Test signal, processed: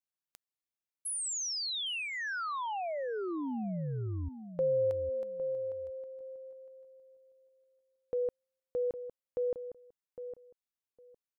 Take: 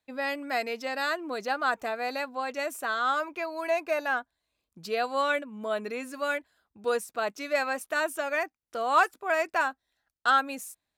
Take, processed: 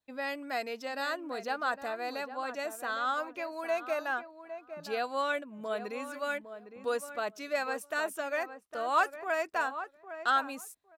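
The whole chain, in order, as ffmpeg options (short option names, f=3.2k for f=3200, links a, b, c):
-filter_complex "[0:a]adynamicequalizer=threshold=0.00316:dfrequency=2200:dqfactor=4.6:tfrequency=2200:tqfactor=4.6:attack=5:release=100:ratio=0.375:range=2.5:mode=cutabove:tftype=bell,asplit=2[a][b];[b]adelay=808,lowpass=f=1.4k:p=1,volume=-10dB,asplit=2[c][d];[d]adelay=808,lowpass=f=1.4k:p=1,volume=0.17[e];[c][e]amix=inputs=2:normalize=0[f];[a][f]amix=inputs=2:normalize=0,volume=-4.5dB"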